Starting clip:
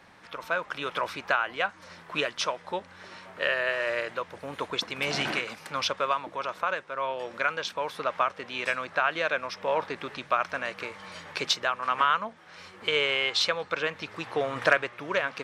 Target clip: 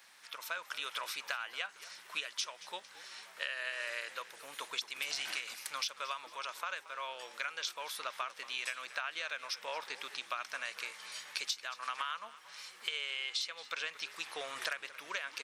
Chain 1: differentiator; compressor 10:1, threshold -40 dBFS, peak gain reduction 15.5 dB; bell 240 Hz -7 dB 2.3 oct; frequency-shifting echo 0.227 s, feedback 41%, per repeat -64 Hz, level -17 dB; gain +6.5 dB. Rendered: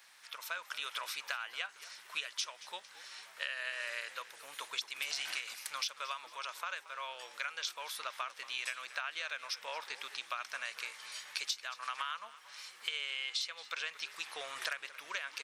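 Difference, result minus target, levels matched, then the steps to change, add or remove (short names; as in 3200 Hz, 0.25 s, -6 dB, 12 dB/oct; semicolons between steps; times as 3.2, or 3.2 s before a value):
250 Hz band -6.0 dB
remove: bell 240 Hz -7 dB 2.3 oct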